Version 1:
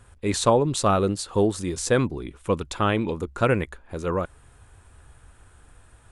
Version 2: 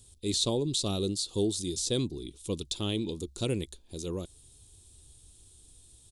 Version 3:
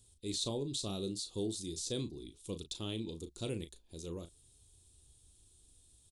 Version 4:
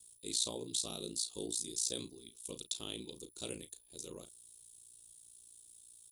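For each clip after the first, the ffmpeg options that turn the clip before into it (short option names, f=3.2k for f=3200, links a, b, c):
-filter_complex "[0:a]firequalizer=gain_entry='entry(240,0);entry(350,3);entry(530,-7);entry(1500,-20);entry(3600,14)':delay=0.05:min_phase=1,acrossover=split=3800[a][b];[b]acompressor=threshold=-24dB:ratio=4:attack=1:release=60[c];[a][c]amix=inputs=2:normalize=0,volume=-7.5dB"
-filter_complex "[0:a]asplit=2[a][b];[b]adelay=36,volume=-10dB[c];[a][c]amix=inputs=2:normalize=0,volume=-8.5dB"
-af "aemphasis=mode=production:type=bsi,aeval=exprs='val(0)+0.000891*sin(2*PI*10000*n/s)':c=same,aeval=exprs='val(0)*sin(2*PI*29*n/s)':c=same"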